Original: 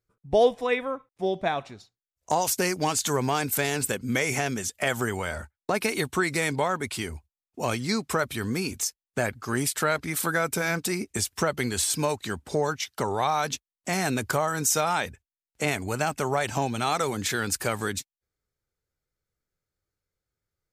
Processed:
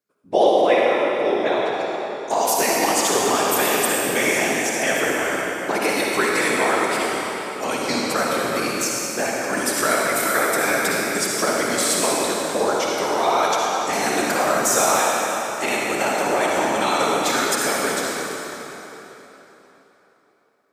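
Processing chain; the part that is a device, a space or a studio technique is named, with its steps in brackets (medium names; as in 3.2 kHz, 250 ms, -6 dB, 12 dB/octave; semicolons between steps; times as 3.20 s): whispering ghost (whisper effect; high-pass 280 Hz 12 dB/octave; reverberation RT60 3.8 s, pre-delay 48 ms, DRR -4 dB); trim +2.5 dB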